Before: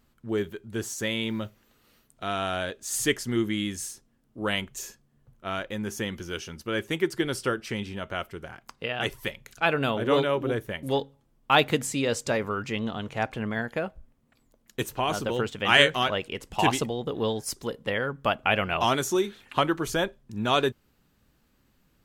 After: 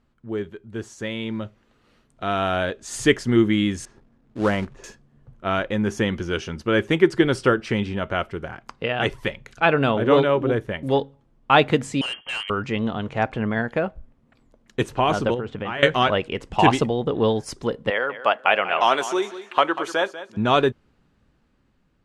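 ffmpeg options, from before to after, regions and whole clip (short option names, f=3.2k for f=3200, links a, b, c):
-filter_complex "[0:a]asettb=1/sr,asplit=3[a][b][c];[a]atrim=end=3.854[d];[b]atrim=start=3.85:end=4.84,asetpts=PTS-STARTPTS,afade=t=in:d=0.004:c=qsin,afade=t=out:st=0.986:d=0.004:c=qsin,lowpass=1.5k,acrusher=bits=3:mode=log:mix=0:aa=0.000001[e];[c]atrim=start=4.836[f];[d][e]acrossfade=d=0.004:c1=hsin:c2=qsin[g];[g][f]acrossfade=d=0.004:c1=qsin:c2=hsin,asettb=1/sr,asplit=3[h][i][j];[h]atrim=end=12.014[k];[i]atrim=start=12.01:end=12.5,asetpts=PTS-STARTPTS,afade=t=in:d=0.004:c=qsin,afade=t=out:st=0.486:d=0.004:c=qsin,lowpass=f=2.8k:t=q:w=0.5098,lowpass=f=2.8k:t=q:w=0.6013,lowpass=f=2.8k:t=q:w=0.9,lowpass=f=2.8k:t=q:w=2.563,afreqshift=-3300,asoftclip=type=hard:threshold=-28dB[l];[j]atrim=start=12.496[m];[k][l]acrossfade=d=0.004:c1=hsin:c2=qsin[n];[n][m]acrossfade=d=0.004:c1=qsin:c2=hsin,asettb=1/sr,asplit=3[o][p][q];[o]atrim=end=15.344[r];[p]atrim=start=15.34:end=15.83,asetpts=PTS-STARTPTS,afade=t=in:d=0.004:c=qsin,afade=t=out:st=0.486:d=0.004:c=qsin,lowpass=f=1.6k:p=1,acompressor=threshold=-31dB:ratio=8:attack=3.2:release=140:knee=1:detection=peak[s];[q]atrim=start=15.826[t];[r][s]acrossfade=d=0.004:c1=hsin:c2=qsin[u];[u][t]acrossfade=d=0.004:c1=qsin:c2=hsin,asettb=1/sr,asplit=3[v][w][x];[v]atrim=end=17.904[y];[w]atrim=start=17.9:end=20.37,asetpts=PTS-STARTPTS,afade=t=in:d=0.004:c=qsin,afade=t=out:st=2.466:d=0.004:c=qsin,highpass=520,aecho=1:1:192|384|576:0.211|0.0465|0.0102,atrim=end_sample=108927[z];[x]atrim=start=20.366[aa];[y][z]acrossfade=d=0.004:c1=hsin:c2=qsin[ab];[ab][aa]acrossfade=d=0.004:c1=qsin:c2=hsin,lowpass=f=11k:w=0.5412,lowpass=f=11k:w=1.3066,aemphasis=mode=reproduction:type=75kf,dynaudnorm=f=590:g=7:m=11.5dB"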